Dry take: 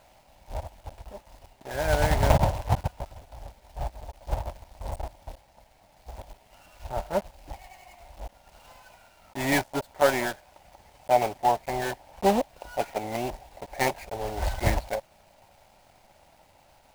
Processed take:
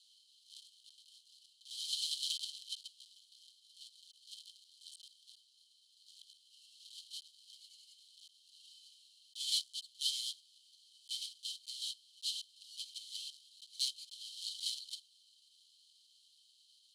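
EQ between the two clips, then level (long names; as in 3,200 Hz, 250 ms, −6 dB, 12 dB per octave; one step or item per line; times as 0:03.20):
Chebyshev high-pass with heavy ripple 3,000 Hz, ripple 9 dB
high-frequency loss of the air 91 metres
+10.5 dB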